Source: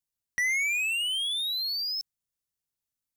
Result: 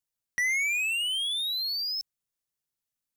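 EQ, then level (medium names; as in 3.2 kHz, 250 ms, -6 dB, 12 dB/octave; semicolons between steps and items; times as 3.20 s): peaking EQ 65 Hz -14 dB 0.4 oct; 0.0 dB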